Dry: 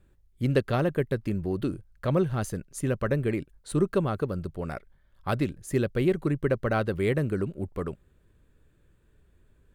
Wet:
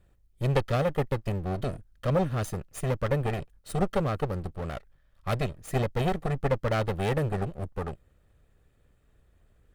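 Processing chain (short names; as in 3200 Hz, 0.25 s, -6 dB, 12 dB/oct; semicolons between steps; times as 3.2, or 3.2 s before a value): minimum comb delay 1.6 ms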